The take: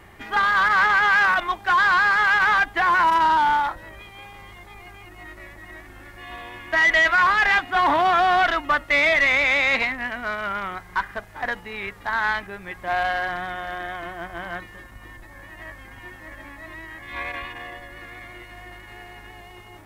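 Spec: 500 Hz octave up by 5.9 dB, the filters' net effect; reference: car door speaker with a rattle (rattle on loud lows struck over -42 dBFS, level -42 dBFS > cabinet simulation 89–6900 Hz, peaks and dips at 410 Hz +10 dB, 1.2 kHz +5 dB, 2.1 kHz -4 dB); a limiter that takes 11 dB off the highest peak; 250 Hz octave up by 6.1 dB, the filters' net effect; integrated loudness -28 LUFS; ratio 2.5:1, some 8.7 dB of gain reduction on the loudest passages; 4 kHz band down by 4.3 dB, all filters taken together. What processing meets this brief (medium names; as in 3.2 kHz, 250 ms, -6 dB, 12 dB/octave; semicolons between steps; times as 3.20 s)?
peaking EQ 250 Hz +3.5 dB; peaking EQ 500 Hz +4 dB; peaking EQ 4 kHz -5.5 dB; compression 2.5:1, threshold -29 dBFS; peak limiter -27.5 dBFS; rattle on loud lows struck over -42 dBFS, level -42 dBFS; cabinet simulation 89–6900 Hz, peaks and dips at 410 Hz +10 dB, 1.2 kHz +5 dB, 2.1 kHz -4 dB; trim +6 dB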